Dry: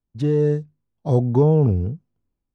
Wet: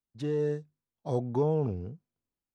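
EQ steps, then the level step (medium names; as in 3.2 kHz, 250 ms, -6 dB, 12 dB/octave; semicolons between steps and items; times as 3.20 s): bass shelf 86 Hz -9 dB; bass shelf 450 Hz -7 dB; -5.5 dB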